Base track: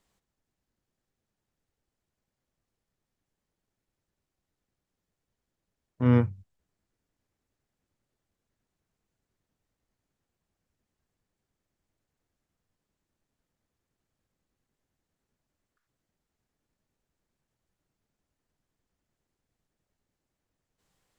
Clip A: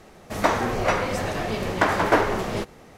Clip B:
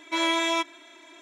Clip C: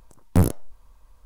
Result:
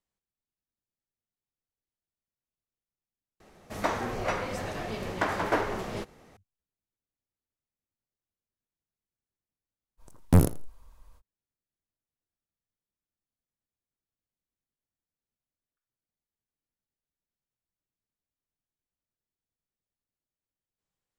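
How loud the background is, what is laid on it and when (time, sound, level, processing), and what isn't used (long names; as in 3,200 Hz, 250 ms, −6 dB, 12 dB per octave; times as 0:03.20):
base track −15.5 dB
0:03.40: overwrite with A −8 dB
0:09.97: mix in C −1.5 dB, fades 0.05 s + repeating echo 83 ms, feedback 18%, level −19 dB
not used: B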